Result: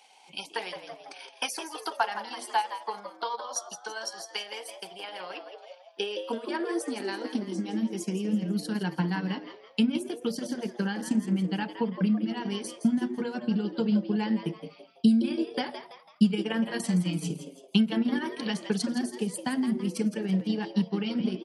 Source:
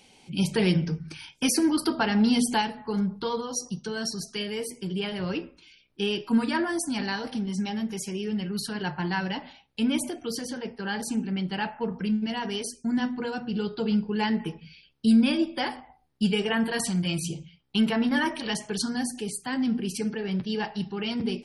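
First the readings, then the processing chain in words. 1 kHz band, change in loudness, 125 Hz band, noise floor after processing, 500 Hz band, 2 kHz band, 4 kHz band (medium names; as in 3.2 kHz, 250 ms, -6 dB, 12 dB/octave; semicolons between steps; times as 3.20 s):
-1.5 dB, -2.0 dB, -1.5 dB, -55 dBFS, -2.5 dB, -5.0 dB, -4.5 dB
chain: compression 2:1, threshold -32 dBFS, peak gain reduction 9 dB; transient shaper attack +8 dB, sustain -8 dB; on a send: frequency-shifting echo 166 ms, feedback 42%, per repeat +120 Hz, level -10.5 dB; on the sum: high-pass sweep 790 Hz -> 180 Hz, 5.18–8.45 s; trim -3 dB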